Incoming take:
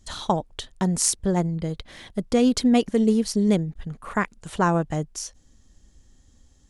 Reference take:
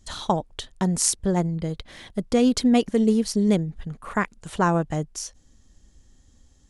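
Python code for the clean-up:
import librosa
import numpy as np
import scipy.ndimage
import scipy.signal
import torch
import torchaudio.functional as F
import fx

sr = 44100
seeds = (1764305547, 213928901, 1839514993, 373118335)

y = fx.fix_declip(x, sr, threshold_db=-6.0)
y = fx.fix_interpolate(y, sr, at_s=(3.74,), length_ms=11.0)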